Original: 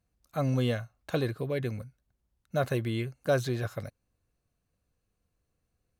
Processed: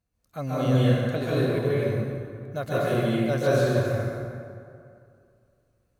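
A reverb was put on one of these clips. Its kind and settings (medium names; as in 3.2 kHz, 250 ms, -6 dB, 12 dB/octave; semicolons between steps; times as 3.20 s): plate-style reverb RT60 2.4 s, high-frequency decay 0.55×, pre-delay 120 ms, DRR -9 dB; trim -3.5 dB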